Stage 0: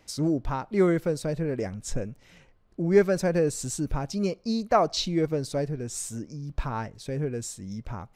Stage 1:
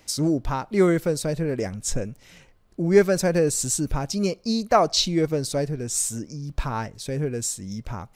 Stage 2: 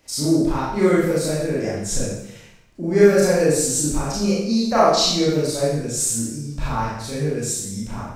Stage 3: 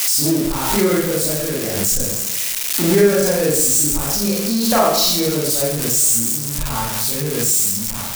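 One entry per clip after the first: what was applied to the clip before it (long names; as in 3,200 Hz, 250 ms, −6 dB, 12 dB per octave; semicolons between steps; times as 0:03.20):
high-shelf EQ 4,200 Hz +8.5 dB; level +3 dB
four-comb reverb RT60 0.79 s, combs from 27 ms, DRR −9 dB; level −5.5 dB
spike at every zero crossing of −11 dBFS; four-comb reverb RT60 3.9 s, combs from 28 ms, DRR 19.5 dB; background raised ahead of every attack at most 35 dB per second; level −1 dB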